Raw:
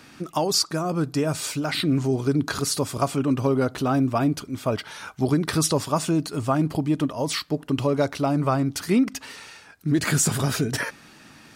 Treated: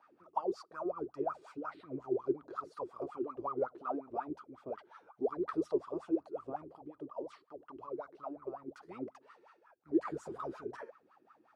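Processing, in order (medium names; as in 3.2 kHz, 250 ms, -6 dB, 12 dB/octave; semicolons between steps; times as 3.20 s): octave divider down 1 oct, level -5 dB; 6.63–8.68 s: compression, threshold -24 dBFS, peak gain reduction 7.5 dB; wah-wah 5.5 Hz 340–1300 Hz, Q 17; trim +2 dB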